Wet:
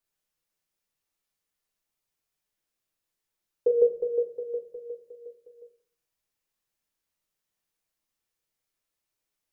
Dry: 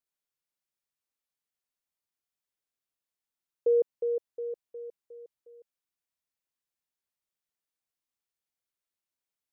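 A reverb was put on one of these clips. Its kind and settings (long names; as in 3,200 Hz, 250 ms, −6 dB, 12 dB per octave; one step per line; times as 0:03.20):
rectangular room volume 37 cubic metres, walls mixed, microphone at 0.58 metres
level +3.5 dB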